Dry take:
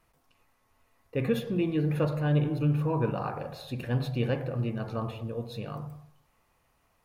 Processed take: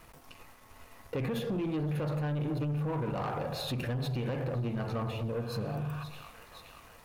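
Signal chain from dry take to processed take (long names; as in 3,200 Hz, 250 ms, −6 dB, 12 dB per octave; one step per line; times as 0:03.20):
brickwall limiter −23 dBFS, peak gain reduction 8 dB
delay with a high-pass on its return 524 ms, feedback 63%, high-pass 1,400 Hz, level −18.5 dB
healed spectral selection 0:05.37–0:06.01, 880–3,900 Hz before
downward compressor 2.5 to 1, threshold −50 dBFS, peak gain reduction 15.5 dB
leveller curve on the samples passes 2
level +8 dB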